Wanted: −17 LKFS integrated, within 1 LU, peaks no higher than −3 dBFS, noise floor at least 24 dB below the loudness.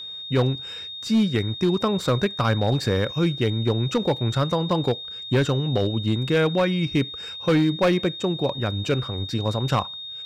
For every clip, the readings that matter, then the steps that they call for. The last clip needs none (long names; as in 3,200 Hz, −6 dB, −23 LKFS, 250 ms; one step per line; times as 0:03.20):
share of clipped samples 1.6%; peaks flattened at −14.0 dBFS; interfering tone 3,700 Hz; level of the tone −33 dBFS; integrated loudness −23.5 LKFS; sample peak −14.0 dBFS; target loudness −17.0 LKFS
→ clipped peaks rebuilt −14 dBFS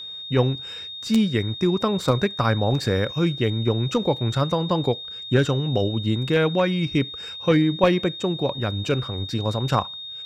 share of clipped samples 0.0%; interfering tone 3,700 Hz; level of the tone −33 dBFS
→ notch filter 3,700 Hz, Q 30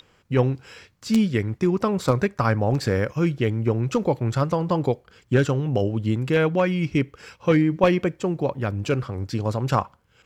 interfering tone none found; integrated loudness −23.0 LKFS; sample peak −5.0 dBFS; target loudness −17.0 LKFS
→ level +6 dB
brickwall limiter −3 dBFS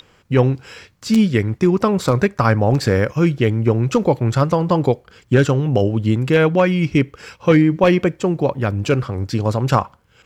integrated loudness −17.5 LKFS; sample peak −3.0 dBFS; background noise floor −55 dBFS